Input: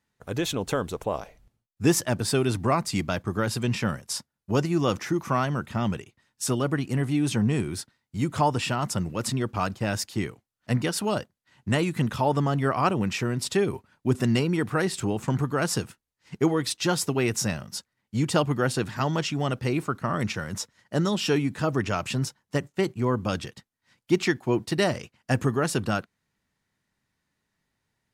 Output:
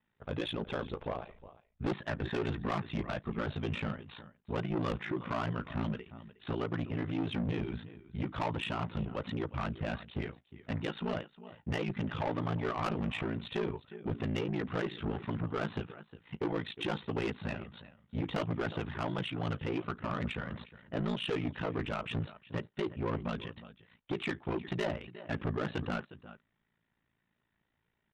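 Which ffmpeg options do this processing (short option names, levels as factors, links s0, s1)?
-filter_complex "[0:a]asettb=1/sr,asplit=3[s0][s1][s2];[s0]atrim=end=2.084[s3];[s1]atrim=start=2.08:end=2.88,asetpts=PTS-STARTPTS,afade=t=in:d=0.004:c=qsin,afade=t=out:st=0.796:d=0.004:c=qsin,equalizer=f=1800:w=7:g=12.5[s4];[s2]atrim=start=2.876[s5];[s3][s4]acrossfade=d=0.004:c1=hsin:c2=qsin[s6];[s6][s5]acrossfade=d=0.004:c1=qsin:c2=hsin,asplit=2[s7][s8];[s8]acompressor=threshold=0.0158:ratio=6,volume=0.841[s9];[s7][s9]amix=inputs=2:normalize=0,flanger=delay=4.7:depth=6:regen=38:speed=1.5:shape=sinusoidal,asplit=2[s10][s11];[s11]aecho=0:1:360:0.106[s12];[s10][s12]amix=inputs=2:normalize=0,aresample=8000,aresample=44100,asoftclip=type=tanh:threshold=0.0473,aeval=exprs='val(0)*sin(2*PI*28*n/s)':c=same"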